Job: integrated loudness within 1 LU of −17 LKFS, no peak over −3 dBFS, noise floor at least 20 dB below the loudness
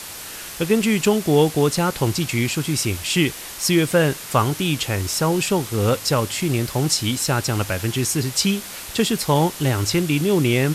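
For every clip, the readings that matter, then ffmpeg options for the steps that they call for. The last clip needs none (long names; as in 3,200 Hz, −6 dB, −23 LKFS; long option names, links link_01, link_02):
background noise floor −35 dBFS; target noise floor −41 dBFS; integrated loudness −20.5 LKFS; sample peak −4.0 dBFS; target loudness −17.0 LKFS
→ -af "afftdn=noise_reduction=6:noise_floor=-35"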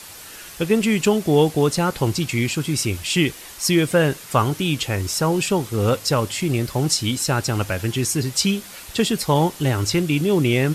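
background noise floor −40 dBFS; target noise floor −41 dBFS
→ -af "afftdn=noise_reduction=6:noise_floor=-40"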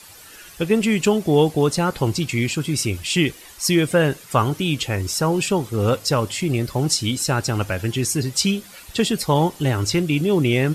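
background noise floor −44 dBFS; integrated loudness −20.5 LKFS; sample peak −4.0 dBFS; target loudness −17.0 LKFS
→ -af "volume=3.5dB,alimiter=limit=-3dB:level=0:latency=1"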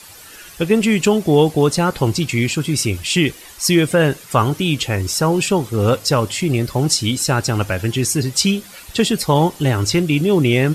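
integrated loudness −17.5 LKFS; sample peak −3.0 dBFS; background noise floor −40 dBFS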